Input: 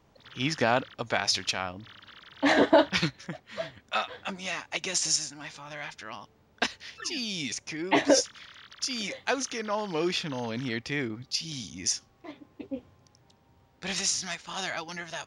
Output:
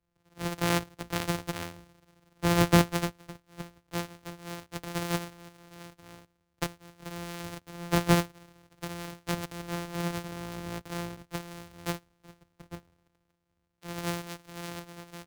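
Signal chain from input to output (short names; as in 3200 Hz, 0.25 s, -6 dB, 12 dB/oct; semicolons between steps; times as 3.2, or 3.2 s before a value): sample sorter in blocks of 256 samples; three-band expander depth 40%; gain -4.5 dB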